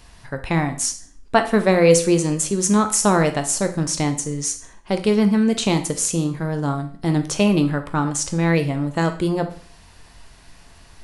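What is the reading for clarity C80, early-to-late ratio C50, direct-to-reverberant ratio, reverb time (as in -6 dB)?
16.5 dB, 12.0 dB, 7.0 dB, 0.45 s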